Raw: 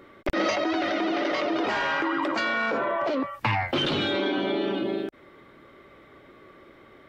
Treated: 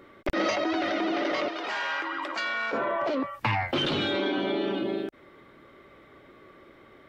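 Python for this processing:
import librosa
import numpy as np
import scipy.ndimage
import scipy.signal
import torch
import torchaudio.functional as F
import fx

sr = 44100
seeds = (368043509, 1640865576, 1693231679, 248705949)

y = fx.highpass(x, sr, hz=1100.0, slope=6, at=(1.48, 2.73))
y = y * librosa.db_to_amplitude(-1.5)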